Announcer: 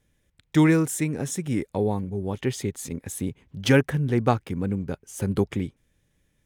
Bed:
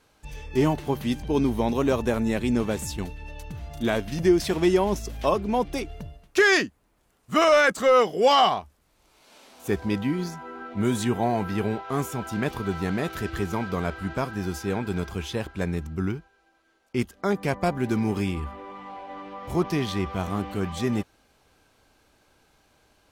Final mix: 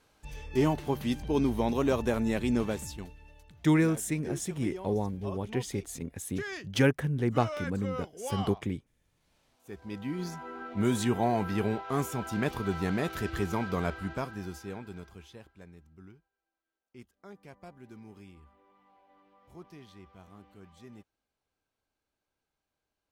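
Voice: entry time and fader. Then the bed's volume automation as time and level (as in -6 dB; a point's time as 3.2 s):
3.10 s, -5.5 dB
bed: 2.64 s -4 dB
3.57 s -20 dB
9.66 s -20 dB
10.34 s -3 dB
13.89 s -3 dB
15.73 s -24.5 dB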